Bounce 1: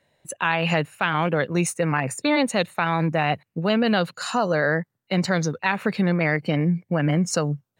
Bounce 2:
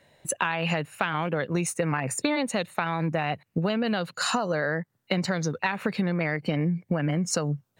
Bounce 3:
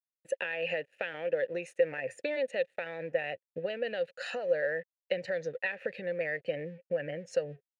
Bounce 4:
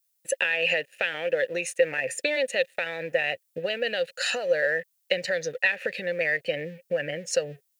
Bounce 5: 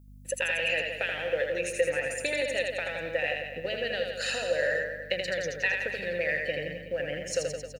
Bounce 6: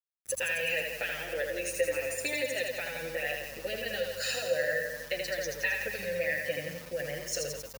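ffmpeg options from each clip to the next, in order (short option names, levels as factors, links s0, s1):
-af "acompressor=threshold=0.0355:ratio=12,volume=2.11"
-filter_complex "[0:a]asubboost=boost=7.5:cutoff=85,aeval=exprs='sgn(val(0))*max(abs(val(0))-0.00376,0)':c=same,asplit=3[s0][s1][s2];[s0]bandpass=f=530:t=q:w=8,volume=1[s3];[s1]bandpass=f=1840:t=q:w=8,volume=0.501[s4];[s2]bandpass=f=2480:t=q:w=8,volume=0.355[s5];[s3][s4][s5]amix=inputs=3:normalize=0,volume=1.88"
-af "crystalizer=i=6.5:c=0,volume=1.5"
-filter_complex "[0:a]aeval=exprs='val(0)+0.00447*(sin(2*PI*50*n/s)+sin(2*PI*2*50*n/s)/2+sin(2*PI*3*50*n/s)/3+sin(2*PI*4*50*n/s)/4+sin(2*PI*5*50*n/s)/5)':c=same,asplit=2[s0][s1];[s1]aecho=0:1:80|168|264.8|371.3|488.4:0.631|0.398|0.251|0.158|0.1[s2];[s0][s2]amix=inputs=2:normalize=0,volume=0.562"
-filter_complex "[0:a]aeval=exprs='val(0)*gte(abs(val(0)),0.00891)':c=same,aexciter=amount=2.2:drive=3.3:freq=4700,asplit=2[s0][s1];[s1]adelay=7.2,afreqshift=-0.49[s2];[s0][s2]amix=inputs=2:normalize=1"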